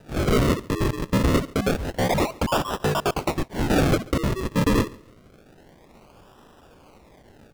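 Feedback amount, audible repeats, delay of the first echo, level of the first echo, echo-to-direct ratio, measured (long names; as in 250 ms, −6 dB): 26%, 2, 139 ms, −23.0 dB, −22.5 dB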